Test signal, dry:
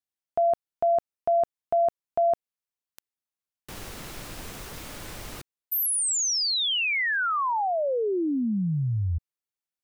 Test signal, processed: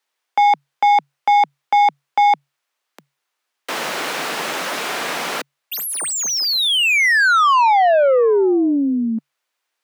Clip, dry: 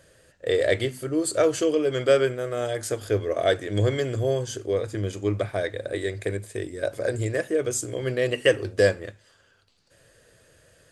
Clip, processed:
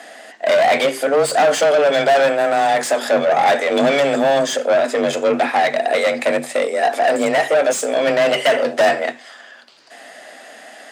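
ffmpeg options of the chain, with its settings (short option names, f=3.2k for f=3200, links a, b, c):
-filter_complex "[0:a]asplit=2[a][b];[b]highpass=f=720:p=1,volume=30dB,asoftclip=type=tanh:threshold=-6dB[c];[a][c]amix=inputs=2:normalize=0,lowpass=f=2.2k:p=1,volume=-6dB,afreqshift=140"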